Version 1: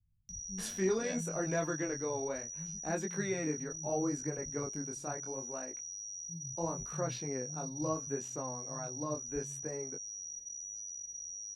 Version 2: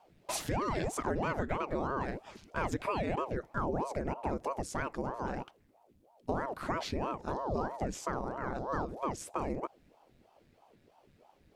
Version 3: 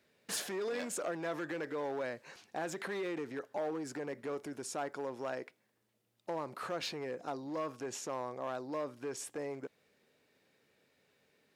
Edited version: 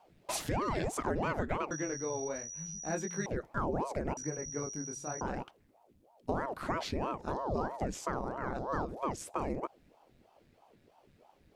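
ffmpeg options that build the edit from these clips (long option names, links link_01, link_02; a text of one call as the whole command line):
ffmpeg -i take0.wav -i take1.wav -filter_complex "[0:a]asplit=2[link_01][link_02];[1:a]asplit=3[link_03][link_04][link_05];[link_03]atrim=end=1.712[link_06];[link_01]atrim=start=1.708:end=3.262[link_07];[link_04]atrim=start=3.258:end=4.172[link_08];[link_02]atrim=start=4.168:end=5.212[link_09];[link_05]atrim=start=5.208[link_10];[link_06][link_07]acrossfade=duration=0.004:curve1=hsin:curve2=hsin[link_11];[link_11][link_08]acrossfade=duration=0.004:curve1=hsin:curve2=hsin[link_12];[link_12][link_09]acrossfade=duration=0.004:curve1=hsin:curve2=hsin[link_13];[link_13][link_10]acrossfade=duration=0.004:curve1=hsin:curve2=hsin" out.wav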